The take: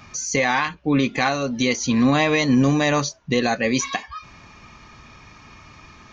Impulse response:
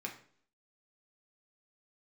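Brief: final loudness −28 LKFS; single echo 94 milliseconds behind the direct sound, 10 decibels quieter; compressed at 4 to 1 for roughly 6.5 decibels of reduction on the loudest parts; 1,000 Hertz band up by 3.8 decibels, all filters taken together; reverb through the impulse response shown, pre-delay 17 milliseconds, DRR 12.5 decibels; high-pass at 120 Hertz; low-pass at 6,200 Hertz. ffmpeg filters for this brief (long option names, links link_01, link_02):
-filter_complex "[0:a]highpass=120,lowpass=6200,equalizer=frequency=1000:width_type=o:gain=5,acompressor=threshold=-21dB:ratio=4,aecho=1:1:94:0.316,asplit=2[link_01][link_02];[1:a]atrim=start_sample=2205,adelay=17[link_03];[link_02][link_03]afir=irnorm=-1:irlink=0,volume=-12.5dB[link_04];[link_01][link_04]amix=inputs=2:normalize=0,volume=-3.5dB"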